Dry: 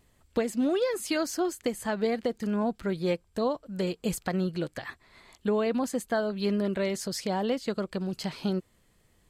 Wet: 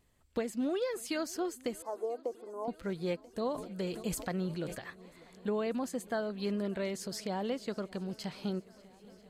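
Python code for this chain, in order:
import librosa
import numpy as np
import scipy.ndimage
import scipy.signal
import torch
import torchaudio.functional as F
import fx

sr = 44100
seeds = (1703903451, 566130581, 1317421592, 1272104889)

y = fx.ellip_bandpass(x, sr, low_hz=320.0, high_hz=1100.0, order=3, stop_db=40, at=(1.82, 2.68))
y = fx.echo_swing(y, sr, ms=987, ratio=1.5, feedback_pct=65, wet_db=-23.5)
y = fx.sustainer(y, sr, db_per_s=75.0, at=(3.4, 4.76), fade=0.02)
y = y * 10.0 ** (-6.5 / 20.0)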